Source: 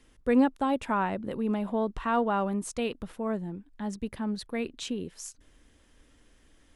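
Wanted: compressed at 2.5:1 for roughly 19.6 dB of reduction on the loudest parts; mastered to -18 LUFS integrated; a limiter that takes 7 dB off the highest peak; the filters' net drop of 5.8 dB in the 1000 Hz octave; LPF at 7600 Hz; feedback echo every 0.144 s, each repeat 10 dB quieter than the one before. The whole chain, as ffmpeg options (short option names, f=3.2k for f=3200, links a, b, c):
-af "lowpass=7.6k,equalizer=f=1k:t=o:g=-7.5,acompressor=threshold=-49dB:ratio=2.5,alimiter=level_in=14dB:limit=-24dB:level=0:latency=1,volume=-14dB,aecho=1:1:144|288|432|576:0.316|0.101|0.0324|0.0104,volume=29.5dB"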